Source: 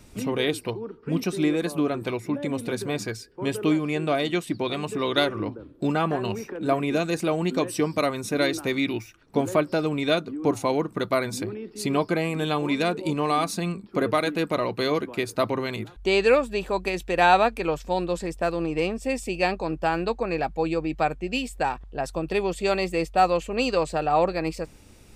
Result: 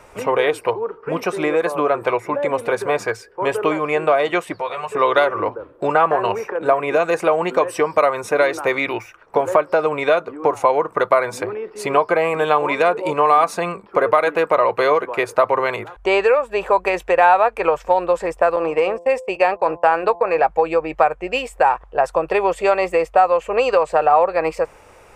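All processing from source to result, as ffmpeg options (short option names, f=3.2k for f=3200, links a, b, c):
-filter_complex "[0:a]asettb=1/sr,asplit=3[a][b][c];[a]atrim=end=4.544[d];[b]atrim=start=4.54:end=4.95,asetpts=PTS-STARTPTS,afade=t=in:d=0.004:c=qsin,afade=t=out:st=0.406:d=0.004:c=qsin,equalizer=f=290:w=1.7:g=-12.5,acompressor=threshold=-38dB:ratio=2.5:attack=3.2:release=140:knee=1:detection=peak,asplit=2[e][f];[f]adelay=12,volume=-4dB[g];[e][g]amix=inputs=2:normalize=0,atrim=end_sample=18081[h];[c]atrim=start=4.946[i];[d][h]acrossfade=d=0.004:c1=hsin:c2=qsin[j];[j][i]acrossfade=d=0.004:c1=qsin:c2=hsin,asettb=1/sr,asplit=3[k][l][m];[k]atrim=end=18.564[n];[l]atrim=start=18.56:end=20.43,asetpts=PTS-STARTPTS,afade=t=in:d=0.004:c=qsin,afade=t=out:st=1.866:d=0.004:c=qsin,agate=range=-29dB:threshold=-33dB:ratio=16:release=100:detection=peak,highpass=f=110:p=1,bandreject=f=171.9:t=h:w=4,bandreject=f=343.8:t=h:w=4,bandreject=f=515.7:t=h:w=4,bandreject=f=687.6:t=h:w=4,bandreject=f=859.5:t=h:w=4,bandreject=f=1.0314k:t=h:w=4[o];[m]atrim=start=20.426[p];[n][o]acrossfade=d=0.004:c1=hsin:c2=qsin[q];[q][p]acrossfade=d=0.004:c1=qsin:c2=hsin,equalizer=f=250:t=o:w=1:g=-8,equalizer=f=500:t=o:w=1:g=11,equalizer=f=1k:t=o:w=1:g=8,equalizer=f=4k:t=o:w=1:g=-10,acompressor=threshold=-16dB:ratio=6,equalizer=f=2k:w=0.32:g=13,volume=-2.5dB"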